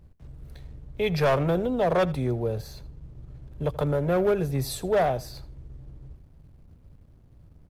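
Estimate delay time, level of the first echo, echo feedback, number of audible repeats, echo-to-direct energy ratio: 81 ms, -19.5 dB, 17%, 2, -19.5 dB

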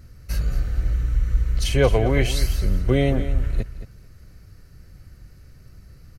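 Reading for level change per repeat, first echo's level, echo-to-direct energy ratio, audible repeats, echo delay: -14.5 dB, -12.5 dB, -12.5 dB, 2, 0.221 s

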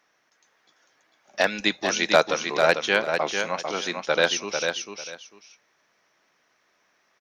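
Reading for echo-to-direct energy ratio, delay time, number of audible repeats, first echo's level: -5.5 dB, 0.447 s, 2, -5.5 dB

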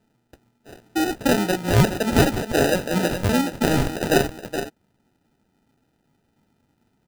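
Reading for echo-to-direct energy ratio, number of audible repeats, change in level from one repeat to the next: -9.0 dB, 1, no steady repeat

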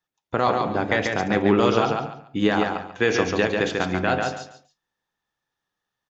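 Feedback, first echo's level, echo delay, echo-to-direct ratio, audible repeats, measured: 25%, -4.0 dB, 0.141 s, -3.5 dB, 3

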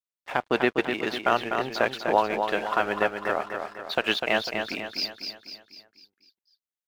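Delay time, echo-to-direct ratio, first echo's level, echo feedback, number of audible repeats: 0.249 s, -5.0 dB, -6.0 dB, 49%, 5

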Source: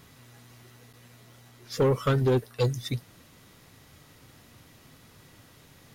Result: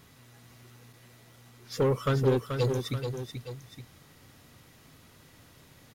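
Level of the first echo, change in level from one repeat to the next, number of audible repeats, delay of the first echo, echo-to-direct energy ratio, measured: -7.0 dB, -6.0 dB, 2, 0.433 s, -6.0 dB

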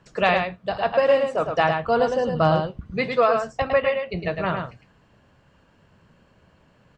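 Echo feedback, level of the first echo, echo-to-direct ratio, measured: no steady repeat, -5.5 dB, -5.5 dB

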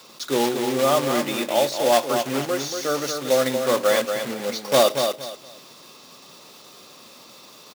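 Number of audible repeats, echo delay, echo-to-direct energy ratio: 3, 0.233 s, -6.0 dB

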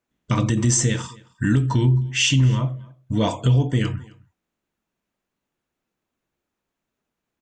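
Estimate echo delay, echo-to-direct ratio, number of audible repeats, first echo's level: 0.262 s, -24.0 dB, 1, -24.0 dB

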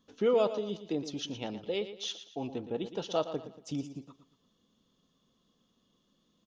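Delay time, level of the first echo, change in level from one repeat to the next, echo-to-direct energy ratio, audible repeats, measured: 0.116 s, -12.0 dB, -8.5 dB, -11.5 dB, 3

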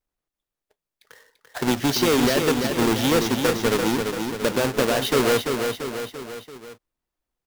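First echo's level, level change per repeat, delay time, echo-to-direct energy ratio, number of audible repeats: -5.5 dB, -5.0 dB, 0.34 s, -4.0 dB, 4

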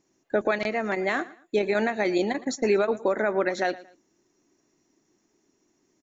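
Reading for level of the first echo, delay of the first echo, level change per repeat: -19.0 dB, 0.114 s, -10.5 dB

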